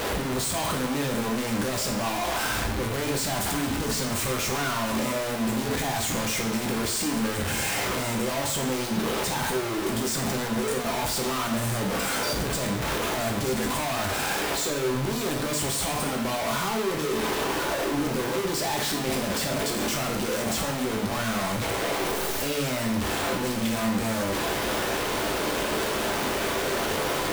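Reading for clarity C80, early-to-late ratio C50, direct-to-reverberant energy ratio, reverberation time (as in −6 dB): 9.0 dB, 6.0 dB, 0.0 dB, 0.70 s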